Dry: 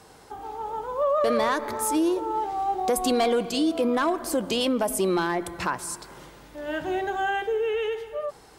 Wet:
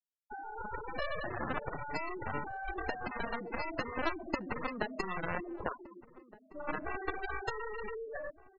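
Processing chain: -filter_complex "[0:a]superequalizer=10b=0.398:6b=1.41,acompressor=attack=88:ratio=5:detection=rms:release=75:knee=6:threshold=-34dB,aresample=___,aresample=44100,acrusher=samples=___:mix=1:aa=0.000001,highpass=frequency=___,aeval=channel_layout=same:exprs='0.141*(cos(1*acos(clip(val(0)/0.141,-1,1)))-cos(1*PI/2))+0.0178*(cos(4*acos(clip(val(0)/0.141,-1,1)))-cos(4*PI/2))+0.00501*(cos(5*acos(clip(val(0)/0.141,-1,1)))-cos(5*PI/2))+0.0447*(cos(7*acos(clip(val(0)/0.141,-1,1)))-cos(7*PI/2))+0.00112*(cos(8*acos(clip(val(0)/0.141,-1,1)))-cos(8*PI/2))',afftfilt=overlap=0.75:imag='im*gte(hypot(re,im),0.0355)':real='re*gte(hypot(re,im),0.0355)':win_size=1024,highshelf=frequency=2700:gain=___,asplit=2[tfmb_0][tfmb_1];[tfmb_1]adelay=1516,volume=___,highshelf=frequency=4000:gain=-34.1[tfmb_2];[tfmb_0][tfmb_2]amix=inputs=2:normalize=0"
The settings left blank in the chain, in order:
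8000, 19, 210, -2, -19dB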